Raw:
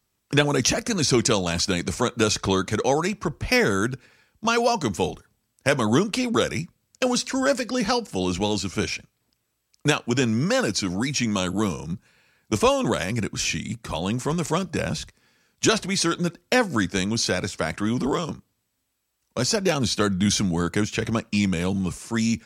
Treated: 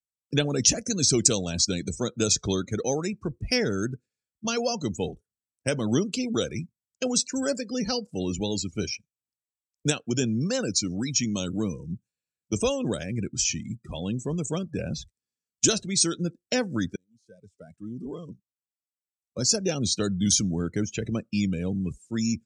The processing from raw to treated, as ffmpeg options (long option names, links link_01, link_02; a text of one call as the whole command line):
ffmpeg -i in.wav -filter_complex "[0:a]asplit=2[link_01][link_02];[link_01]atrim=end=16.96,asetpts=PTS-STARTPTS,afade=type=out:start_time=16.956:duration=0.004:curve=hsin[link_03];[link_02]atrim=start=16.96,asetpts=PTS-STARTPTS,afade=type=in:duration=2.57[link_04];[link_03][link_04]concat=n=2:v=0:a=1,afftdn=noise_reduction=29:noise_floor=-30,equalizer=frequency=1000:width_type=o:width=1:gain=-11,equalizer=frequency=2000:width_type=o:width=1:gain=-5,equalizer=frequency=8000:width_type=o:width=1:gain=12,volume=-3dB" out.wav